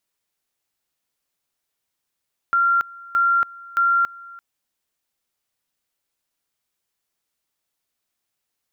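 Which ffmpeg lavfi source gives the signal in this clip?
-f lavfi -i "aevalsrc='pow(10,(-14.5-22.5*gte(mod(t,0.62),0.28))/20)*sin(2*PI*1380*t)':d=1.86:s=44100"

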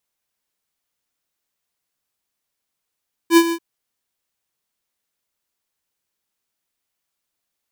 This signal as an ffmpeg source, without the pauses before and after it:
-f lavfi -i "aevalsrc='0.376*(2*lt(mod(335*t,1),0.5)-1)':d=0.287:s=44100,afade=t=in:d=0.068,afade=t=out:st=0.068:d=0.062:silence=0.237,afade=t=out:st=0.22:d=0.067"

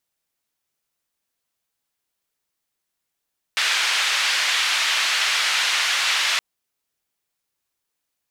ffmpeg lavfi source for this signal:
-f lavfi -i "anoisesrc=c=white:d=2.82:r=44100:seed=1,highpass=f=1500,lowpass=f=3500,volume=-6.2dB"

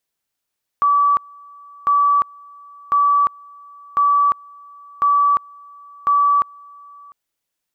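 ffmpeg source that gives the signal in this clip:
-f lavfi -i "aevalsrc='pow(10,(-11.5-27*gte(mod(t,1.05),0.35))/20)*sin(2*PI*1150*t)':d=6.3:s=44100"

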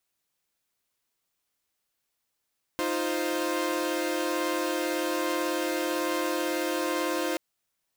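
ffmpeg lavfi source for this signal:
-f lavfi -i "aevalsrc='0.0376*((2*mod(311.13*t,1)-1)+(2*mod(349.23*t,1)-1)+(2*mod(523.25*t,1)-1))':d=4.58:s=44100"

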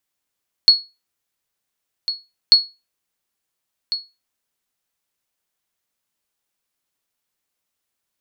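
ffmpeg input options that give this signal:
-f lavfi -i "aevalsrc='0.794*(sin(2*PI*4350*mod(t,1.84))*exp(-6.91*mod(t,1.84)/0.25)+0.224*sin(2*PI*4350*max(mod(t,1.84)-1.4,0))*exp(-6.91*max(mod(t,1.84)-1.4,0)/0.25))':d=3.68:s=44100"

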